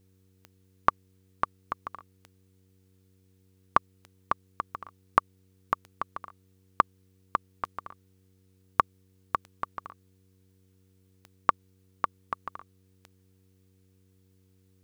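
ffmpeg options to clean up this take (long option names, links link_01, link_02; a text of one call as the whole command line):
ffmpeg -i in.wav -af "adeclick=threshold=4,bandreject=frequency=94.4:width_type=h:width=4,bandreject=frequency=188.8:width_type=h:width=4,bandreject=frequency=283.2:width_type=h:width=4,bandreject=frequency=377.6:width_type=h:width=4,bandreject=frequency=472:width_type=h:width=4" out.wav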